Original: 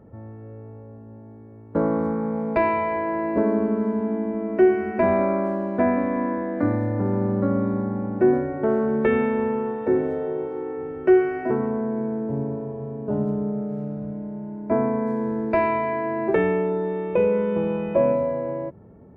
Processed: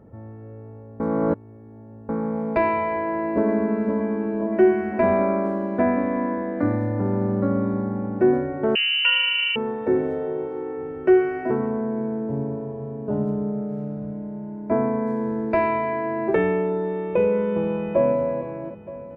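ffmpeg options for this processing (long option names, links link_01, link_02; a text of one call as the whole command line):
ffmpeg -i in.wav -filter_complex "[0:a]asplit=2[link_01][link_02];[link_02]afade=type=in:start_time=2.96:duration=0.01,afade=type=out:start_time=3.94:duration=0.01,aecho=0:1:520|1040|1560|2080|2600|3120|3640|4160|4680:0.473151|0.307548|0.199906|0.129939|0.0844605|0.0548993|0.0356845|0.023195|0.0150767[link_03];[link_01][link_03]amix=inputs=2:normalize=0,asettb=1/sr,asplit=3[link_04][link_05][link_06];[link_04]atrim=end=8.754[link_07];[link_05]atrim=start=8.75:end=9.56,asetpts=PTS-STARTPTS,afade=type=in:duration=0.004:curve=qsin,afade=type=out:start_time=0.806:duration=0.004:curve=qsin,lowpass=frequency=2700:width_type=q:width=0.5098,lowpass=frequency=2700:width_type=q:width=0.6013,lowpass=frequency=2700:width_type=q:width=0.9,lowpass=frequency=2700:width_type=q:width=2.563,afreqshift=-3200[link_08];[link_06]atrim=start=9.556[link_09];[link_07][link_08]acrossfade=duration=0.004:curve1=hsin:curve2=qsin[link_10];[link_10][link_09]acrossfade=duration=0.004:curve1=qsin:curve2=hsin,asplit=2[link_11][link_12];[link_12]afade=type=in:start_time=17.72:duration=0.01,afade=type=out:start_time=18.28:duration=0.01,aecho=0:1:460|920|1380|1840|2300|2760|3220:0.223872|0.134323|0.080594|0.0483564|0.0290138|0.0174083|0.010445[link_13];[link_11][link_13]amix=inputs=2:normalize=0,asplit=3[link_14][link_15][link_16];[link_14]atrim=end=1.002[link_17];[link_15]atrim=start=0.998:end=2.092,asetpts=PTS-STARTPTS,areverse[link_18];[link_16]atrim=start=2.088[link_19];[link_17][link_18]acrossfade=duration=0.004:curve1=hsin:curve2=hsin[link_20];[link_20][link_19]acrossfade=duration=0.004:curve1=hsin:curve2=hsin" out.wav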